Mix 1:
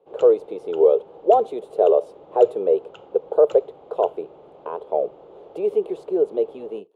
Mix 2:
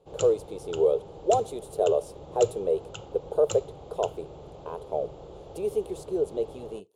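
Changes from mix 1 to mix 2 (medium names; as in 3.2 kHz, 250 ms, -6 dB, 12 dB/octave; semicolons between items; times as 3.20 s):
speech -7.5 dB; master: remove three-band isolator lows -21 dB, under 210 Hz, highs -22 dB, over 3 kHz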